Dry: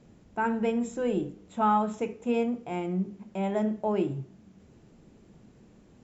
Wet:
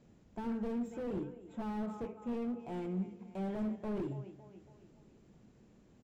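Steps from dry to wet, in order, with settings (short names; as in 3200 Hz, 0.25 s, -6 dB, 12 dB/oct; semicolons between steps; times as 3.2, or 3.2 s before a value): 0.78–2.6 high shelf 2500 Hz -10.5 dB; feedback echo 0.278 s, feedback 50%, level -18.5 dB; slew limiter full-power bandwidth 14 Hz; gain -7 dB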